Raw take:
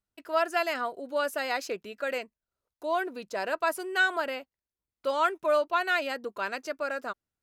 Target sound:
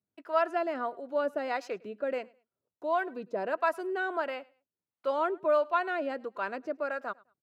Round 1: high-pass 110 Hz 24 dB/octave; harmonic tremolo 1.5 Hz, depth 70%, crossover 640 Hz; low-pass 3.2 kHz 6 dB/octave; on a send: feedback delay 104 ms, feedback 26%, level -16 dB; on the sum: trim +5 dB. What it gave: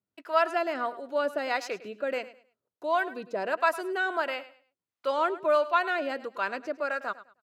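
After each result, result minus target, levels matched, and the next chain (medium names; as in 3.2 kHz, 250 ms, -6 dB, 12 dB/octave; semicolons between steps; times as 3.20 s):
4 kHz band +5.5 dB; echo-to-direct +8.5 dB
high-pass 110 Hz 24 dB/octave; harmonic tremolo 1.5 Hz, depth 70%, crossover 640 Hz; low-pass 920 Hz 6 dB/octave; on a send: feedback delay 104 ms, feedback 26%, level -16 dB; on the sum: trim +5 dB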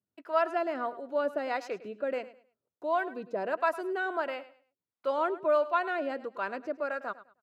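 echo-to-direct +8.5 dB
high-pass 110 Hz 24 dB/octave; harmonic tremolo 1.5 Hz, depth 70%, crossover 640 Hz; low-pass 920 Hz 6 dB/octave; on a send: feedback delay 104 ms, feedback 26%, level -24.5 dB; on the sum: trim +5 dB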